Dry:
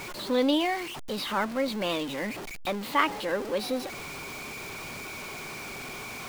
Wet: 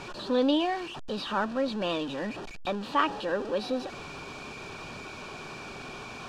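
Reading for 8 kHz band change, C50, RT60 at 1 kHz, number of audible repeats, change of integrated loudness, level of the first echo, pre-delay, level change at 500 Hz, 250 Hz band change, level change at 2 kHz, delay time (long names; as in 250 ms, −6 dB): −9.0 dB, no reverb audible, no reverb audible, no echo audible, −1.0 dB, no echo audible, no reverb audible, −0.5 dB, 0.0 dB, −3.5 dB, no echo audible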